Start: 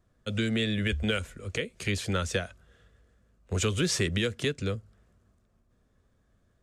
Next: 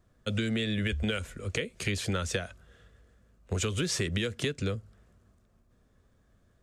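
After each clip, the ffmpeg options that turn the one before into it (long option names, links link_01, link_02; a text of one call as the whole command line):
ffmpeg -i in.wav -af "acompressor=threshold=-29dB:ratio=6,volume=2.5dB" out.wav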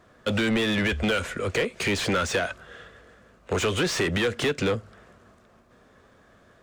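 ffmpeg -i in.wav -filter_complex "[0:a]asplit=2[link_01][link_02];[link_02]highpass=frequency=720:poles=1,volume=25dB,asoftclip=type=tanh:threshold=-15dB[link_03];[link_01][link_03]amix=inputs=2:normalize=0,lowpass=frequency=2000:poles=1,volume=-6dB,volume=1dB" out.wav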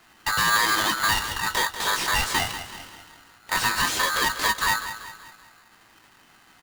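ffmpeg -i in.wav -filter_complex "[0:a]asplit=2[link_01][link_02];[link_02]adelay=18,volume=-6.5dB[link_03];[link_01][link_03]amix=inputs=2:normalize=0,asplit=2[link_04][link_05];[link_05]aecho=0:1:190|380|570|760|950:0.266|0.122|0.0563|0.0259|0.0119[link_06];[link_04][link_06]amix=inputs=2:normalize=0,aeval=exprs='val(0)*sgn(sin(2*PI*1400*n/s))':channel_layout=same" out.wav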